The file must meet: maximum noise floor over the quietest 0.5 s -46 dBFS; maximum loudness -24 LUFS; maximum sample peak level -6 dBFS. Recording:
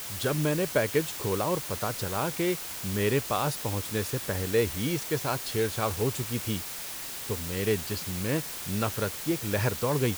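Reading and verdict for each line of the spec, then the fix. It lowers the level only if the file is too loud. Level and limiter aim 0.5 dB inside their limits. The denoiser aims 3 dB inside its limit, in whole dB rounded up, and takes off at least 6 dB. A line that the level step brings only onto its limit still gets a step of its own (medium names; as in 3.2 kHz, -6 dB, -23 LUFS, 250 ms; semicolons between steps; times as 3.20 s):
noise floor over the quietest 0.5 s -38 dBFS: fail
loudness -29.0 LUFS: pass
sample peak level -11.5 dBFS: pass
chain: noise reduction 11 dB, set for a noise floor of -38 dBFS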